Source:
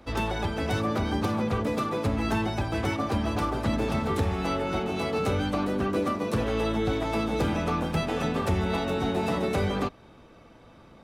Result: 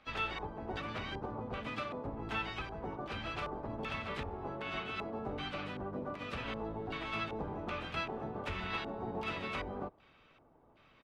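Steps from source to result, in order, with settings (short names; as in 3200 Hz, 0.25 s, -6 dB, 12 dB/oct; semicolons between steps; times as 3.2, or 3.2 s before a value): LFO low-pass square 1.3 Hz 840–2600 Hz; pre-emphasis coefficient 0.9; harmoniser -12 st -1 dB, +4 st -11 dB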